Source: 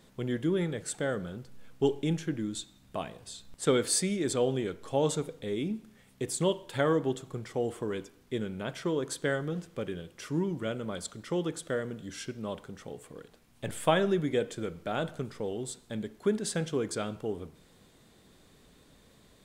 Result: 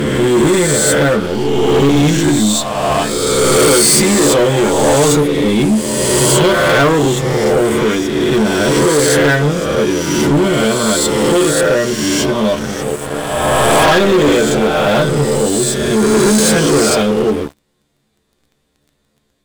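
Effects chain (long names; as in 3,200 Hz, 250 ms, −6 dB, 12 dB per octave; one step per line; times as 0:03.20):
peak hold with a rise ahead of every peak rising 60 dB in 1.78 s
stiff-string resonator 71 Hz, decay 0.21 s, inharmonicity 0.002
leveller curve on the samples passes 5
level +8.5 dB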